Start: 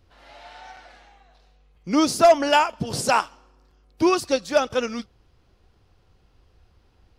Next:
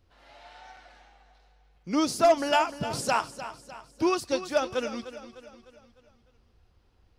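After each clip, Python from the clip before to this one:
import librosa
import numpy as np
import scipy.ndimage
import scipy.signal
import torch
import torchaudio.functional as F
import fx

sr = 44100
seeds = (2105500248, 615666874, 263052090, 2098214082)

y = fx.echo_feedback(x, sr, ms=302, feedback_pct=48, wet_db=-13.0)
y = y * 10.0 ** (-6.0 / 20.0)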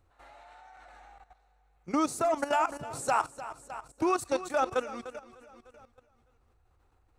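y = fx.graphic_eq_31(x, sr, hz=(200, 800, 1250, 3150, 5000, 8000), db=(-12, 6, 6, -8, -12, 7))
y = fx.level_steps(y, sr, step_db=14)
y = y * 10.0 ** (3.0 / 20.0)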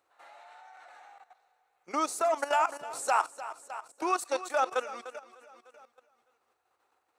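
y = scipy.signal.sosfilt(scipy.signal.butter(2, 530.0, 'highpass', fs=sr, output='sos'), x)
y = y * 10.0 ** (1.5 / 20.0)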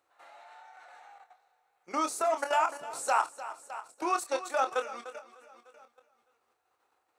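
y = fx.doubler(x, sr, ms=26.0, db=-8)
y = y * 10.0 ** (-1.0 / 20.0)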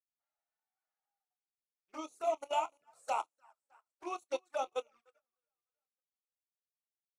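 y = fx.rattle_buzz(x, sr, strikes_db=-55.0, level_db=-35.0)
y = fx.env_flanger(y, sr, rest_ms=8.5, full_db=-28.5)
y = fx.upward_expand(y, sr, threshold_db=-53.0, expansion=2.5)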